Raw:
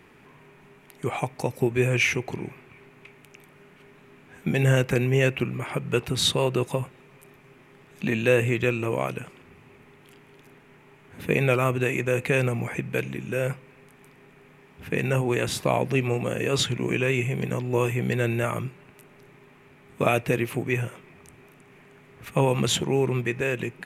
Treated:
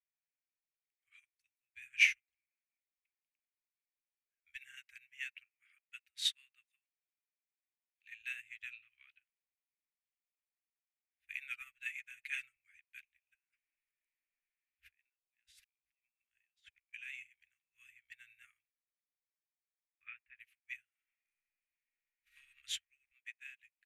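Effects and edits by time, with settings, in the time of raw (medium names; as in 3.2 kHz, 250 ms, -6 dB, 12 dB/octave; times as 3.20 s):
4.55–8.21 s: high-pass 110 Hz
8.73–9.22 s: resonant high shelf 5.3 kHz -10.5 dB, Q 3
11.60–12.56 s: comb 6.1 ms, depth 72%
13.34–16.94 s: compressor with a negative ratio -36 dBFS
18.63–20.40 s: low-pass 2.4 kHz 24 dB/octave
20.90–22.34 s: reverb throw, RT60 2.4 s, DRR -8.5 dB
23.11–23.51 s: high-pass 670 Hz 6 dB/octave
whole clip: inverse Chebyshev band-stop 140–920 Hz, stop band 50 dB; peaking EQ 1.4 kHz +12.5 dB 1.9 oct; upward expansion 2.5:1, over -43 dBFS; trim -7.5 dB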